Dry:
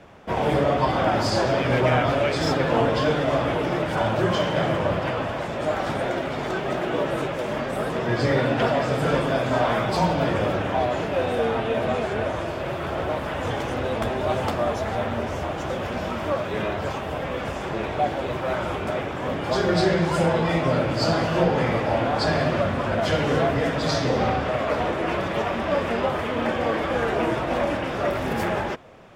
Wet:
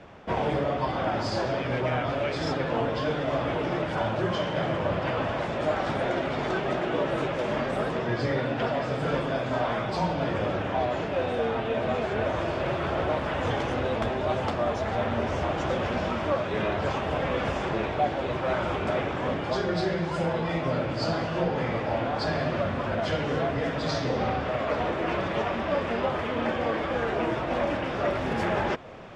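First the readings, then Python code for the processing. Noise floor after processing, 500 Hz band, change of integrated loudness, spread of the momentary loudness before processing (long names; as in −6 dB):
−31 dBFS, −4.0 dB, −4.0 dB, 7 LU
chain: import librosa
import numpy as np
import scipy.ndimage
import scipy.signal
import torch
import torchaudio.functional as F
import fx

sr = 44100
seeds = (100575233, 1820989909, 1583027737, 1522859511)

y = scipy.signal.sosfilt(scipy.signal.butter(2, 6000.0, 'lowpass', fs=sr, output='sos'), x)
y = fx.rider(y, sr, range_db=10, speed_s=0.5)
y = y * librosa.db_to_amplitude(-4.0)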